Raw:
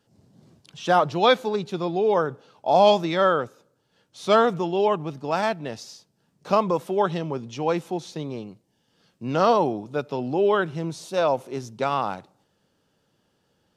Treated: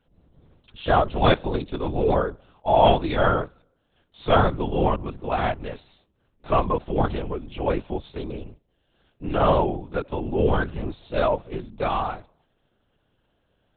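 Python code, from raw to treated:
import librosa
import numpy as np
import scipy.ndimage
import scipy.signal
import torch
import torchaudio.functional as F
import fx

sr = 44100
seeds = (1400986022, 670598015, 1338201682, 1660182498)

y = fx.lpc_vocoder(x, sr, seeds[0], excitation='whisper', order=8)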